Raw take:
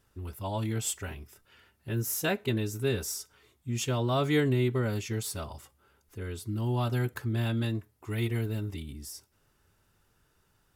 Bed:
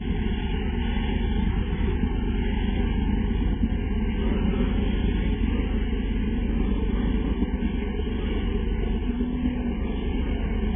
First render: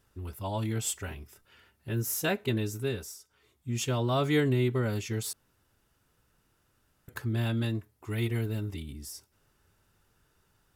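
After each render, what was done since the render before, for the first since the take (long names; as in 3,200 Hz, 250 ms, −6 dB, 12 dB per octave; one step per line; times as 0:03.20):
0:02.69–0:03.71: duck −12 dB, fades 0.49 s
0:05.33–0:07.08: fill with room tone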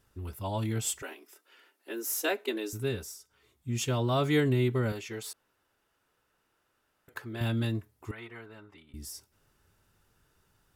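0:01.02–0:02.73: Butterworth high-pass 270 Hz 48 dB per octave
0:04.92–0:07.41: bass and treble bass −14 dB, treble −6 dB
0:08.11–0:08.94: resonant band-pass 1,200 Hz, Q 1.5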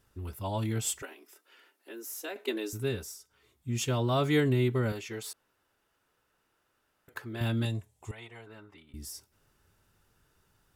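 0:01.05–0:02.36: downward compressor 1.5 to 1, threshold −52 dBFS
0:07.65–0:08.47: drawn EQ curve 160 Hz 0 dB, 300 Hz −9 dB, 500 Hz 0 dB, 810 Hz +3 dB, 1,300 Hz −8 dB, 3,400 Hz +3 dB, 4,800 Hz −2 dB, 7,600 Hz +10 dB, 15,000 Hz −8 dB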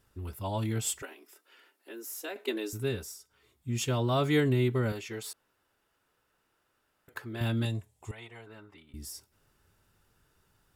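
notch filter 6,100 Hz, Q 24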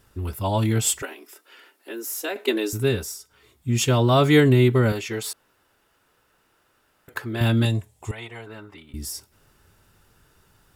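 level +10 dB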